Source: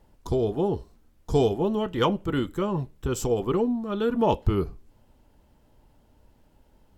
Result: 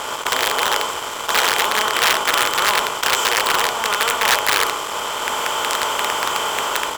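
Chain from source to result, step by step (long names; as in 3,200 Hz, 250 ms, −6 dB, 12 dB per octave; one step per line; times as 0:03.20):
compressor on every frequency bin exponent 0.2
automatic gain control gain up to 4 dB
high-shelf EQ 3,100 Hz −6 dB
on a send: ambience of single reflections 19 ms −5 dB, 71 ms −7.5 dB
on the sum: wrap-around overflow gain 6.5 dB
high-pass filter 1,400 Hz 12 dB per octave
in parallel at −10.5 dB: fuzz pedal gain 32 dB, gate −35 dBFS
on the sum: leveller curve on the samples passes 1
level −2 dB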